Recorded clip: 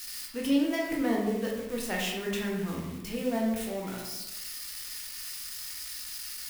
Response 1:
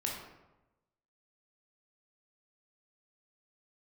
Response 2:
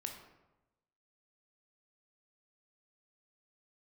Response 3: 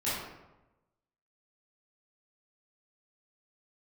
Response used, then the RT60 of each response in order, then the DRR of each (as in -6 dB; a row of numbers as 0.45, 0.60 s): 1; 1.0, 1.0, 1.0 s; -2.0, 3.0, -12.0 dB